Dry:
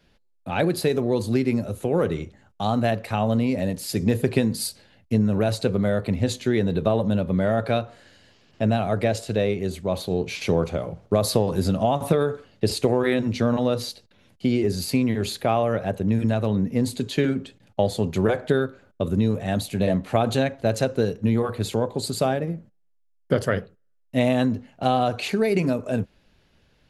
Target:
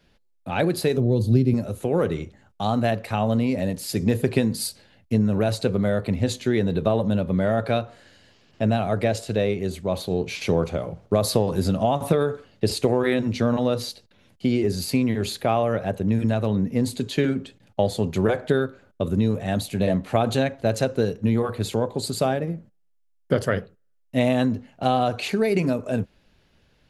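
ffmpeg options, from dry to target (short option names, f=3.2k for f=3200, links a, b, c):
-filter_complex "[0:a]asettb=1/sr,asplit=3[a][b][c];[a]atrim=end=0.974[d];[b]atrim=start=0.97:end=1.54,asetpts=PTS-STARTPTS,afade=t=in:d=0.004:c=qsin,afade=t=out:st=0.566:d=0.004:c=qsin,equalizer=f=125:t=o:w=1:g=10,equalizer=f=1k:t=o:w=1:g=-9,equalizer=f=2k:t=o:w=1:g=-11,equalizer=f=8k:t=o:w=1:g=-8[e];[c]atrim=start=1.536[f];[d][e]acrossfade=d=0.004:c1=hsin:c2=qsin[g];[g][f]acrossfade=d=0.004:c1=qsin:c2=hsin"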